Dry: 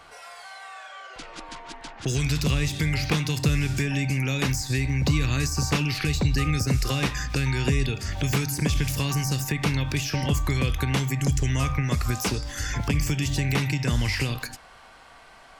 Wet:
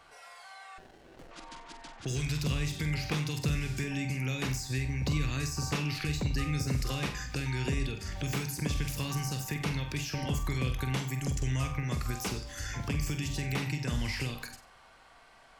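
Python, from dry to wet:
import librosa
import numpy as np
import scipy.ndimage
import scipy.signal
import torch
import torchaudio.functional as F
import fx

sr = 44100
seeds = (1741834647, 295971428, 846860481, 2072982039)

y = fx.room_flutter(x, sr, wall_m=8.0, rt60_s=0.33)
y = fx.running_max(y, sr, window=33, at=(0.78, 1.31))
y = F.gain(torch.from_numpy(y), -8.5).numpy()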